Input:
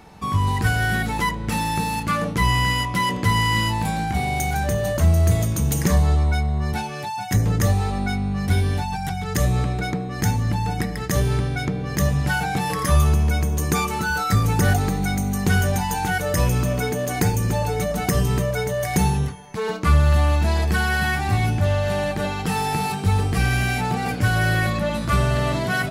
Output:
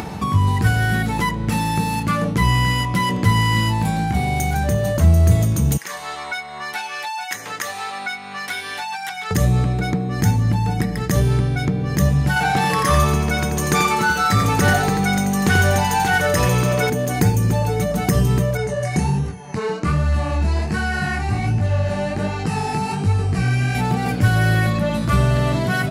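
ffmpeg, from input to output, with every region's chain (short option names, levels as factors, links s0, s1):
-filter_complex "[0:a]asettb=1/sr,asplit=3[s0][s1][s2];[s0]atrim=end=5.774[s3];[s1]atrim=start=5.77:end=9.31,asetpts=PTS-STARTPTS,afade=t=in:d=0.004:c=qsin,afade=t=out:st=3.536:d=0.004:c=qsin,highpass=1400,highshelf=f=4100:g=-9.5[s4];[s2]atrim=start=9.306[s5];[s3][s4]acrossfade=d=0.004:c1=hsin:c2=qsin[s6];[s6][s5]acrossfade=d=0.004:c1=qsin:c2=hsin,asettb=1/sr,asplit=3[s7][s8][s9];[s7]atrim=end=12.364[s10];[s8]atrim=start=12.36:end=16.9,asetpts=PTS-STARTPTS,afade=t=in:d=0.004:c=qsin,afade=t=out:st=4.536:d=0.004:c=qsin,asplit=2[s11][s12];[s12]highpass=f=720:p=1,volume=3.98,asoftclip=type=tanh:threshold=0.473[s13];[s11][s13]amix=inputs=2:normalize=0,lowpass=f=5300:p=1,volume=0.501,aecho=1:1:87:0.531,atrim=end_sample=200214[s14];[s9]atrim=start=16.896[s15];[s10][s14]acrossfade=d=0.004:c1=hsin:c2=qsin[s16];[s16][s15]acrossfade=d=0.004:c1=qsin:c2=hsin,asettb=1/sr,asplit=3[s17][s18][s19];[s17]atrim=end=18.574[s20];[s18]atrim=start=18.57:end=23.75,asetpts=PTS-STARTPTS,afade=t=in:d=0.004:c=qsin,afade=t=out:st=5.176:d=0.004:c=qsin,lowpass=f=10000:w=0.5412,lowpass=f=10000:w=1.3066,bandreject=f=3400:w=6.7,flanger=delay=17.5:depth=7.7:speed=1.3[s21];[s19]atrim=start=23.746[s22];[s20][s21]acrossfade=d=0.004:c1=hsin:c2=qsin[s23];[s23][s22]acrossfade=d=0.004:c1=qsin:c2=hsin,highpass=77,lowshelf=f=290:g=6.5,acompressor=mode=upward:threshold=0.141:ratio=2.5"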